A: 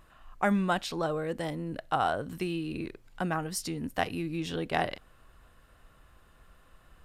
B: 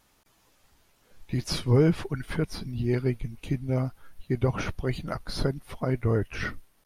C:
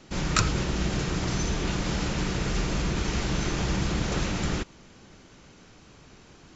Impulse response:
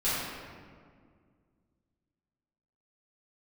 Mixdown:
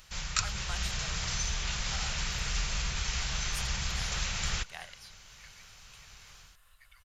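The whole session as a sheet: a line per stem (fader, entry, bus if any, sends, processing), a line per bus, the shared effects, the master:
-9.5 dB, 0.00 s, no send, treble shelf 8.3 kHz +5 dB; upward compressor, threshold -38 dBFS
-12.5 dB, 2.50 s, no send, steep high-pass 1.4 kHz
+1.5 dB, 0.00 s, no send, level rider gain up to 9 dB; auto duck -7 dB, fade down 0.45 s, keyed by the first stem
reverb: none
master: amplifier tone stack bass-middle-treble 10-0-10; gain riding 0.5 s

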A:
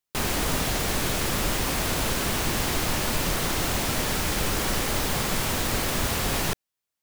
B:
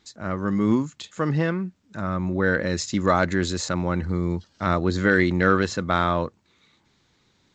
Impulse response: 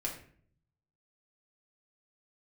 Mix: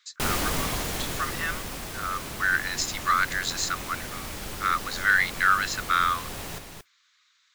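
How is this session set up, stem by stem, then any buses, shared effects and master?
+1.5 dB, 0.05 s, no send, echo send -19 dB, modulation noise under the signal 14 dB; auto duck -13 dB, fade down 1.85 s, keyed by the second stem
+2.0 dB, 0.00 s, no send, no echo send, steep high-pass 1.1 kHz 72 dB/octave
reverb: none
echo: delay 226 ms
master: none

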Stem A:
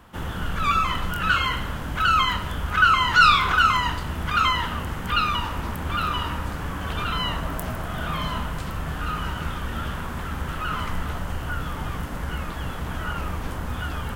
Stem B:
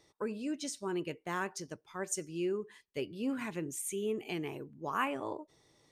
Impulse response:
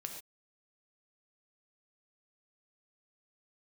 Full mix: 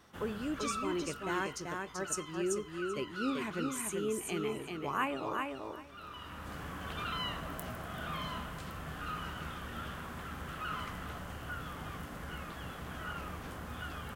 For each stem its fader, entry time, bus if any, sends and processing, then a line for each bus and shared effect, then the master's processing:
-10.0 dB, 0.00 s, no send, echo send -23 dB, high-pass 130 Hz 6 dB/octave; band-stop 920 Hz, Q 11; auto duck -17 dB, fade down 1.90 s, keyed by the second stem
-0.5 dB, 0.00 s, no send, echo send -4 dB, none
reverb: none
echo: feedback delay 386 ms, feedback 17%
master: none

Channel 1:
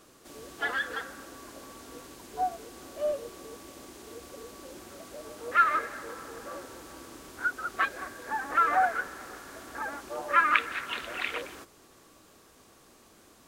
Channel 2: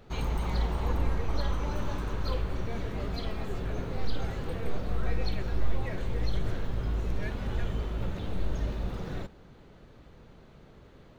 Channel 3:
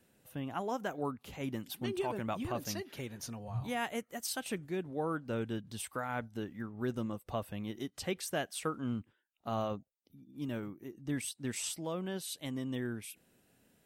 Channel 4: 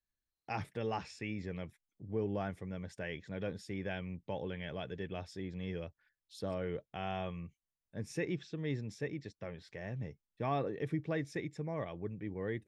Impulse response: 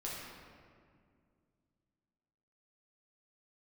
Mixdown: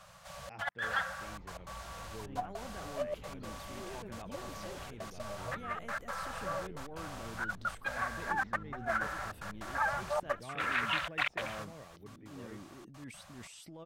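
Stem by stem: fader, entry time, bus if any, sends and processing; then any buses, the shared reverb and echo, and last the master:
+0.5 dB, 0.00 s, no send, Chebyshev band-stop 190–550 Hz, order 4; compressor with a negative ratio -33 dBFS, ratio -0.5; trance gate "xxxxx.x.x" 153 bpm -60 dB
-20.0 dB, 1.15 s, no send, peak limiter -26 dBFS, peak gain reduction 11 dB
-11.5 dB, 1.90 s, no send, transient shaper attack -11 dB, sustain +6 dB; level flattener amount 50%
-12.5 dB, 0.00 s, no send, none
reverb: none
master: low-pass 3.8 kHz 6 dB/octave

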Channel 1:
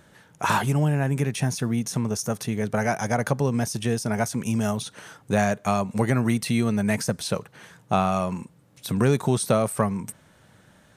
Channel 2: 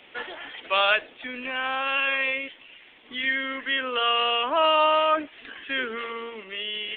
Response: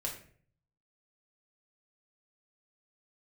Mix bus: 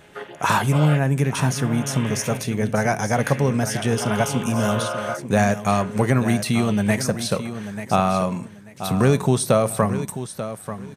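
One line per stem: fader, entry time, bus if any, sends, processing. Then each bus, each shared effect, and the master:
+2.0 dB, 0.00 s, send -13.5 dB, echo send -10 dB, none
+2.0 dB, 0.00 s, no send, no echo send, vocoder on a held chord major triad, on C#3; auto duck -9 dB, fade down 0.75 s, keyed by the first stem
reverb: on, RT60 0.50 s, pre-delay 4 ms
echo: feedback delay 888 ms, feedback 22%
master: none

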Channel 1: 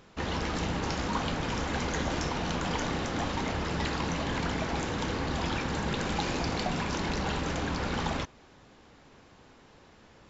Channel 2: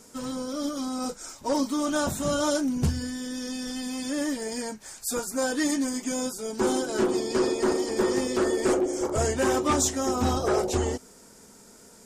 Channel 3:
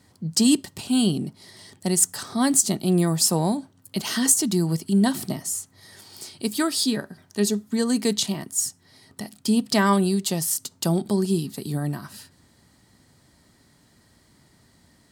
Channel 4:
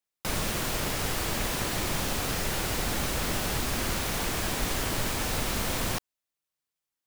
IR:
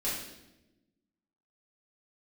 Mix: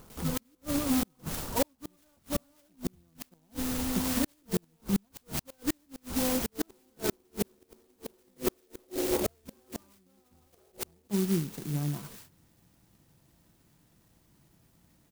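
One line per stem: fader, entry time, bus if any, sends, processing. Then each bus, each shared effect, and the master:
+2.0 dB, 0.00 s, no send, resonant high shelf 1.7 kHz -6 dB, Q 3; auto duck -12 dB, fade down 0.25 s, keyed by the third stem
-0.5 dB, 0.10 s, no send, treble shelf 6 kHz +4.5 dB
-7.5 dB, 0.00 s, no send, comb 6 ms, depth 33%
-19.0 dB, 0.00 s, no send, none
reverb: none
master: bass shelf 76 Hz +8 dB; inverted gate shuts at -16 dBFS, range -41 dB; sampling jitter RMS 0.13 ms

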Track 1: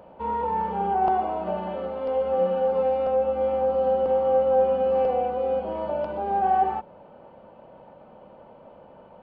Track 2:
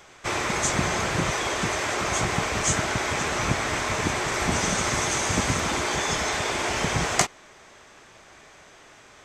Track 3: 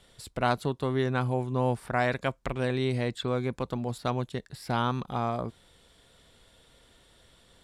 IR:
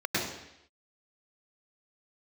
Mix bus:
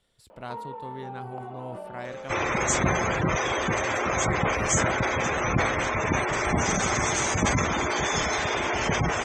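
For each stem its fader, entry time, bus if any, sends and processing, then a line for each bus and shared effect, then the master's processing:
-3.5 dB, 0.30 s, no send, high-pass 240 Hz; band-stop 750 Hz, Q 20; compression 6:1, threshold -34 dBFS, peak gain reduction 16.5 dB
+0.5 dB, 2.05 s, no send, spectral gate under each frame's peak -15 dB strong
-12.5 dB, 0.00 s, no send, none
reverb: none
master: decay stretcher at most 37 dB/s

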